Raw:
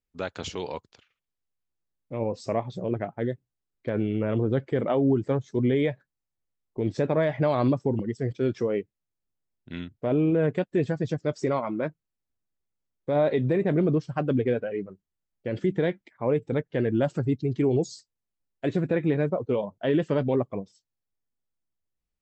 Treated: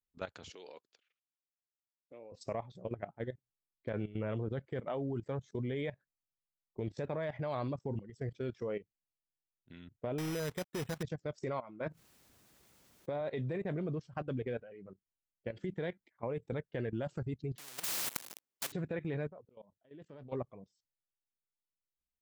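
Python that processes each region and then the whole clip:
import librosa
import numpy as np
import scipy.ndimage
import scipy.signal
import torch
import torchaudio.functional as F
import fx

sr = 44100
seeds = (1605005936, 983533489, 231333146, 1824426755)

y = fx.chain(x, sr, fx.highpass(hz=380.0, slope=12),
    fx.peak_eq(hz=940.0, db=-7.5, octaves=0.74), at=(0.5, 2.32))
y = fx.chain(y, sr, fx.quant_companded(bits=4),
    fx.high_shelf(hz=2000.0, db=7.5),
    fx.resample_bad(factor=8, down='filtered', up='hold'), at=(10.18, 11.03))
y = fx.chain(y, sr, fx.highpass(hz=120.0, slope=6),
    fx.env_flatten(amount_pct=50), at=(11.86, 13.21))
y = fx.chain(y, sr, fx.zero_step(step_db=-28.0),
    fx.highpass(hz=260.0, slope=12),
    fx.spectral_comp(ratio=10.0), at=(17.58, 18.72))
y = fx.chain(y, sr, fx.level_steps(step_db=15),
    fx.auto_swell(attack_ms=430.0),
    fx.doppler_dist(depth_ms=0.17), at=(19.28, 20.33))
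y = fx.dynamic_eq(y, sr, hz=290.0, q=1.1, threshold_db=-35.0, ratio=4.0, max_db=-6)
y = fx.level_steps(y, sr, step_db=15)
y = y * 10.0 ** (-6.0 / 20.0)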